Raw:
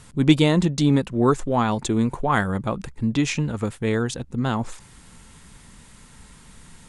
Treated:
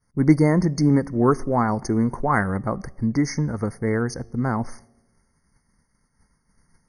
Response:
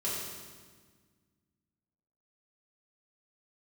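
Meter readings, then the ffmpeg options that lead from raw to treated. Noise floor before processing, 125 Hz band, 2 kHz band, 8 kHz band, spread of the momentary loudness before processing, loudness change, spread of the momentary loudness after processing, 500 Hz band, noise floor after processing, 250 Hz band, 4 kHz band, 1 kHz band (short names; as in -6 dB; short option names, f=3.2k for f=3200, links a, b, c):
-49 dBFS, +0.5 dB, -1.0 dB, -3.5 dB, 9 LU, 0.0 dB, 9 LU, 0.0 dB, -69 dBFS, +0.5 dB, -11.5 dB, +0.5 dB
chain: -filter_complex "[0:a]agate=range=-33dB:threshold=-34dB:ratio=3:detection=peak,asplit=2[a][b];[1:a]atrim=start_sample=2205,asetrate=83790,aresample=44100[c];[b][c]afir=irnorm=-1:irlink=0,volume=-21.5dB[d];[a][d]amix=inputs=2:normalize=0,afftfilt=real='re*eq(mod(floor(b*sr/1024/2200),2),0)':imag='im*eq(mod(floor(b*sr/1024/2200),2),0)':win_size=1024:overlap=0.75"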